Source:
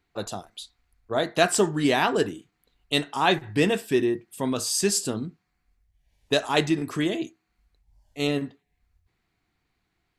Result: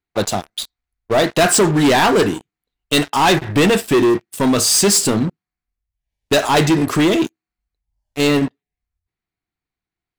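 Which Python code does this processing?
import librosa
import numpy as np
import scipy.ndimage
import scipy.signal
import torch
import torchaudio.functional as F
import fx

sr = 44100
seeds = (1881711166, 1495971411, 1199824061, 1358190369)

y = fx.leveller(x, sr, passes=5)
y = y * 10.0 ** (-3.5 / 20.0)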